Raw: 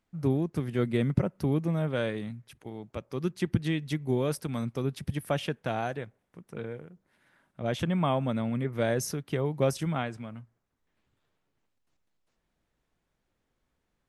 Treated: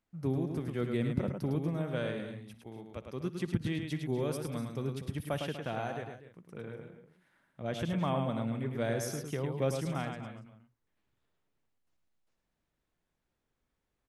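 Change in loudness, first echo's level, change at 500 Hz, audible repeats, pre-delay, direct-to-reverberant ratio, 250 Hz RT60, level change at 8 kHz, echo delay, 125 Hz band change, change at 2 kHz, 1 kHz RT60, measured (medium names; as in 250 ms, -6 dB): -4.5 dB, -19.0 dB, -4.5 dB, 4, no reverb, no reverb, no reverb, -4.5 dB, 60 ms, -4.5 dB, -4.5 dB, no reverb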